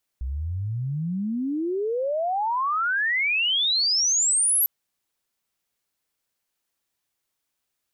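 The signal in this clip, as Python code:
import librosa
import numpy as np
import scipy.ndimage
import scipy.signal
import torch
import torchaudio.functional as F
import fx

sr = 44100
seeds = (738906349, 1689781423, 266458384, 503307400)

y = fx.chirp(sr, length_s=4.45, from_hz=61.0, to_hz=12000.0, law='logarithmic', from_db=-26.0, to_db=-17.5)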